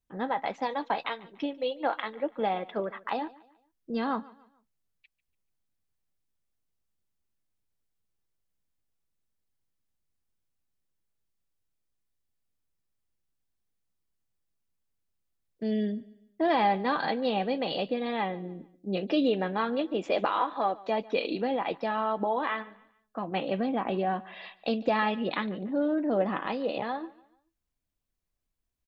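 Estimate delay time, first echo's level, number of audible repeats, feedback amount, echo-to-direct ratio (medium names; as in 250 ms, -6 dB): 145 ms, -21.5 dB, 2, 37%, -21.0 dB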